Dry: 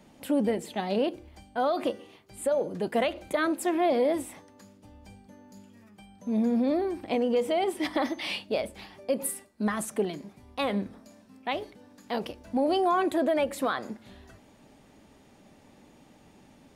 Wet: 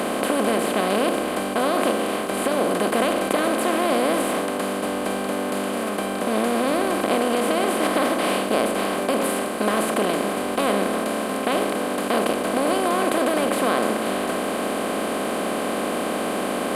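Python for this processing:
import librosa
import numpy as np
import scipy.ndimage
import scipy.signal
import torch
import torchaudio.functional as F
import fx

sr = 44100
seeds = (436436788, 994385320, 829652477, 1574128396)

y = fx.bin_compress(x, sr, power=0.2)
y = y * librosa.db_to_amplitude(-3.5)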